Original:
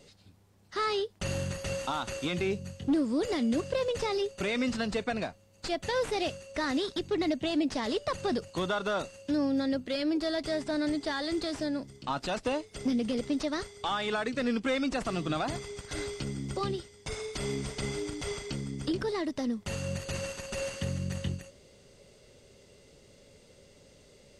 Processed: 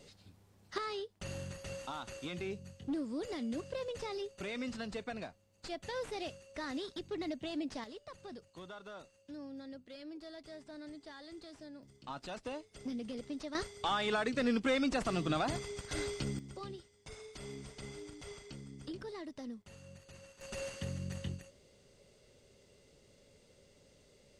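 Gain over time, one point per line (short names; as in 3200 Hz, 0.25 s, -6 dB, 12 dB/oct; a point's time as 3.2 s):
-1.5 dB
from 0.78 s -10 dB
from 7.84 s -18.5 dB
from 11.83 s -11.5 dB
from 13.55 s -2 dB
from 16.39 s -13 dB
from 19.62 s -20 dB
from 20.41 s -7 dB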